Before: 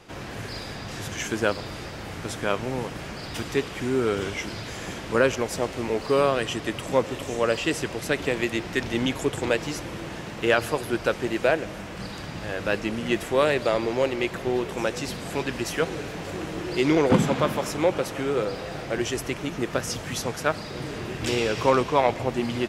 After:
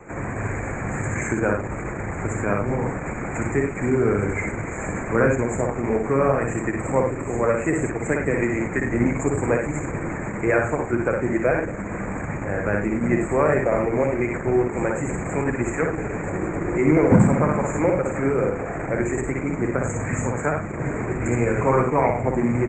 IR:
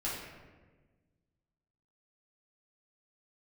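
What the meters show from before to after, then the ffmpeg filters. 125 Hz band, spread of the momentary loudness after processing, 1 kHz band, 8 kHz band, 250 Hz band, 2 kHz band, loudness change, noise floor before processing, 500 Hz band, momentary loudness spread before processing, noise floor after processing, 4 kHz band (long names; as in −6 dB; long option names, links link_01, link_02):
+8.0 dB, 8 LU, +2.5 dB, −0.5 dB, +5.5 dB, +2.0 dB, +3.5 dB, −37 dBFS, +2.5 dB, 12 LU, −30 dBFS, below −25 dB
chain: -filter_complex "[0:a]asuperstop=centerf=4100:order=20:qfactor=0.94,acrossover=split=210[link_01][link_02];[link_02]acompressor=threshold=-39dB:ratio=1.5[link_03];[link_01][link_03]amix=inputs=2:normalize=0,asplit=2[link_04][link_05];[link_05]aecho=0:1:59|99:0.668|0.355[link_06];[link_04][link_06]amix=inputs=2:normalize=0,volume=7.5dB" -ar 48000 -c:a libopus -b:a 12k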